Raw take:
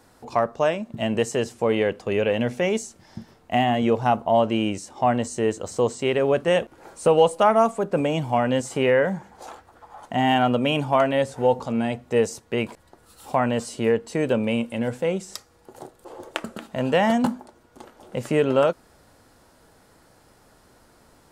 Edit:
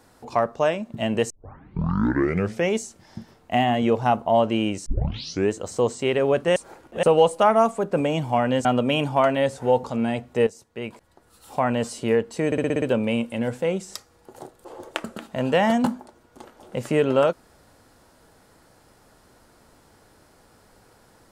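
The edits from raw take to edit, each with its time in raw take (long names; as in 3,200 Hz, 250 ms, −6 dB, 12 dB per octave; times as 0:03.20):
0:01.30: tape start 1.38 s
0:04.86: tape start 0.65 s
0:06.56–0:07.03: reverse
0:08.65–0:10.41: remove
0:12.23–0:13.56: fade in, from −14 dB
0:14.22: stutter 0.06 s, 7 plays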